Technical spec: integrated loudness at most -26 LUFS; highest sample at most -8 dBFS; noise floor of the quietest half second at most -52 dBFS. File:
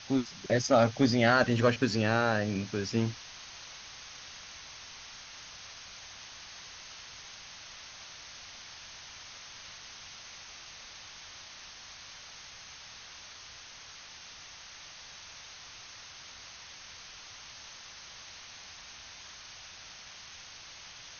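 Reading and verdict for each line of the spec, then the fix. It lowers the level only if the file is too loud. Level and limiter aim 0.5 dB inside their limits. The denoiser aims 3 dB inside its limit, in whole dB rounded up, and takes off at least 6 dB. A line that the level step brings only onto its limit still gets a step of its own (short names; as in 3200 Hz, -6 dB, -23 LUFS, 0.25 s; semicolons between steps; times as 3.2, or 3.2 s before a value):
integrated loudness -32.5 LUFS: OK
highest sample -10.5 dBFS: OK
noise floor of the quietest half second -49 dBFS: fail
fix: denoiser 6 dB, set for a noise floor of -49 dBFS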